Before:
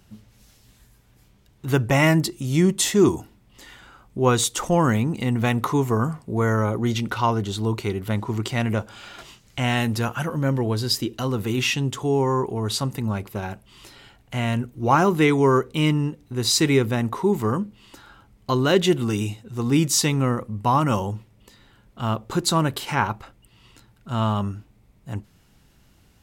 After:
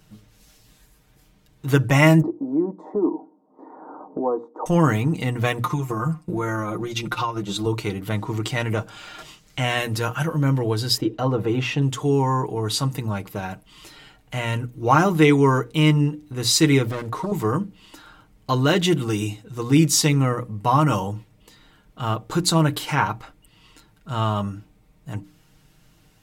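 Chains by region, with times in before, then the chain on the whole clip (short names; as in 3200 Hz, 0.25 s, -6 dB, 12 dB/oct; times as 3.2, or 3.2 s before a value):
2.22–4.66 elliptic band-pass 250–960 Hz, stop band 50 dB + air absorption 89 m + three-band squash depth 70%
5.63–7.66 comb 5.7 ms, depth 99% + transient shaper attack +7 dB, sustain -10 dB + compressor 12:1, threshold -21 dBFS
10.97–11.82 LPF 1500 Hz 6 dB/oct + bell 610 Hz +6.5 dB 1.8 oct
16.85–17.32 compressor 10:1, threshold -21 dBFS + Doppler distortion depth 0.5 ms
whole clip: notches 60/120/180/240/300 Hz; comb 6.5 ms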